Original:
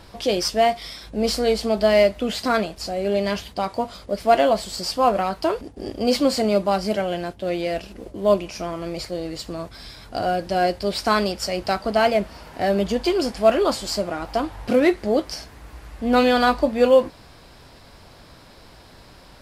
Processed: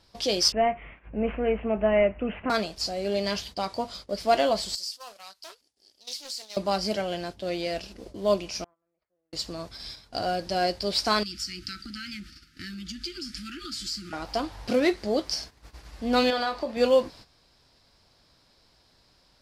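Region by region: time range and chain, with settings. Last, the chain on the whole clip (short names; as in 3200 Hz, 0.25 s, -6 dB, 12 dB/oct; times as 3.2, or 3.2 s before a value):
0.52–2.5 CVSD 64 kbps + steep low-pass 2800 Hz 96 dB/oct + low shelf 150 Hz +5 dB
4.75–6.57 pre-emphasis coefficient 0.97 + compressor, threshold -32 dBFS + Doppler distortion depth 0.33 ms
8.64–9.33 tilt +3 dB/oct + gate -23 dBFS, range -29 dB + LPF 1600 Hz 24 dB/oct
11.23–14.13 brick-wall FIR band-stop 360–1200 Hz + compressor 5:1, threshold -31 dBFS
16.3–16.77 tone controls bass -8 dB, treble -7 dB + compressor 4:1, threshold -19 dBFS + doubler 26 ms -7.5 dB
whole clip: gate -40 dBFS, range -12 dB; bell 5000 Hz +9.5 dB 1.2 oct; gain -6 dB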